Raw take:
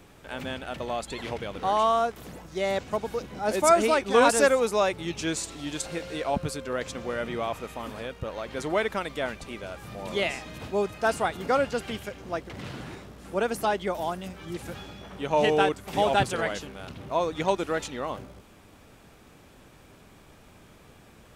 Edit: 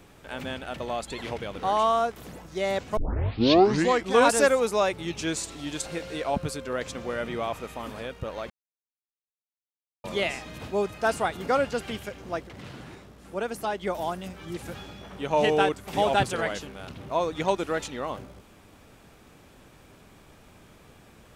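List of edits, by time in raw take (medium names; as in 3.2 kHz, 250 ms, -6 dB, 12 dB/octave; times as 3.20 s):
2.97 s: tape start 1.16 s
8.50–10.04 s: mute
12.47–13.83 s: gain -4 dB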